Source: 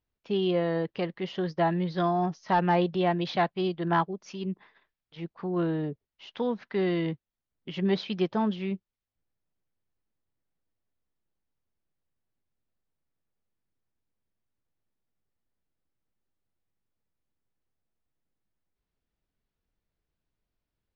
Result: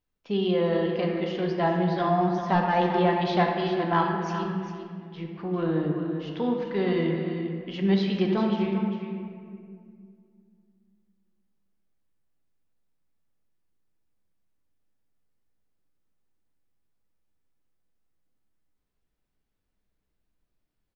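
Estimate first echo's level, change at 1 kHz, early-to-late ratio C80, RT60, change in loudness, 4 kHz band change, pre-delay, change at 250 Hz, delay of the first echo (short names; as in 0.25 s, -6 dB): -10.0 dB, +3.0 dB, 3.0 dB, 2.2 s, +2.5 dB, +2.0 dB, 4 ms, +4.0 dB, 0.398 s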